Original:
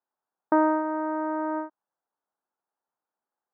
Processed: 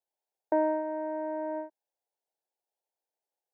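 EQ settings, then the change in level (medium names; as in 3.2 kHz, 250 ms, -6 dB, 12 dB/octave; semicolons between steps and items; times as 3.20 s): high-pass 310 Hz; static phaser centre 510 Hz, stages 4; 0.0 dB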